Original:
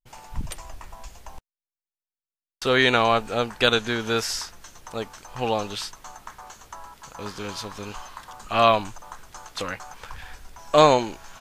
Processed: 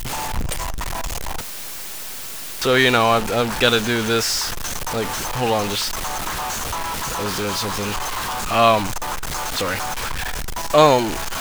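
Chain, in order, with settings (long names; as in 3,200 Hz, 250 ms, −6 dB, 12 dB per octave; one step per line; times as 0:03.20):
converter with a step at zero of −22 dBFS
level +1.5 dB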